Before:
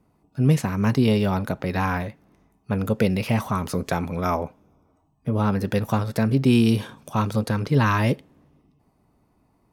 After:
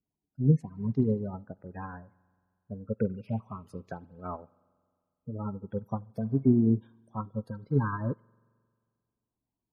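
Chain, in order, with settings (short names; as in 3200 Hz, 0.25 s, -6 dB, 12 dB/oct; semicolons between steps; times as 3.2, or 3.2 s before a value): spectral gate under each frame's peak -15 dB strong; spring tank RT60 2 s, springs 44 ms, chirp 35 ms, DRR 15 dB; upward expander 2.5:1, over -30 dBFS; gain -2 dB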